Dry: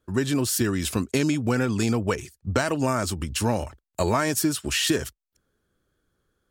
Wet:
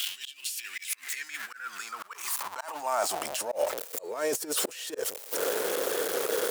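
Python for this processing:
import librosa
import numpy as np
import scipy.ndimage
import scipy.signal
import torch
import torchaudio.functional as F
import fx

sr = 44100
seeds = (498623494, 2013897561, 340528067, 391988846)

y = x + 0.5 * 10.0 ** (-29.0 / 20.0) * np.sign(x)
y = fx.high_shelf(y, sr, hz=7600.0, db=7.0)
y = fx.over_compress(y, sr, threshold_db=-26.0, ratio=-0.5)
y = fx.filter_sweep_highpass(y, sr, from_hz=3000.0, to_hz=480.0, start_s=0.24, end_s=3.88, q=5.3)
y = fx.auto_swell(y, sr, attack_ms=254.0)
y = y * librosa.db_to_amplitude(-2.0)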